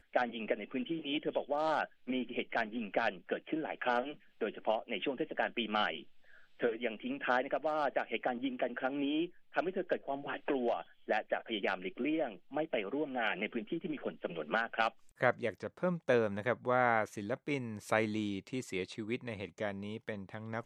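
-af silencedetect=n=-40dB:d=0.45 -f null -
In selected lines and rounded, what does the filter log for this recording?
silence_start: 6.00
silence_end: 6.60 | silence_duration: 0.61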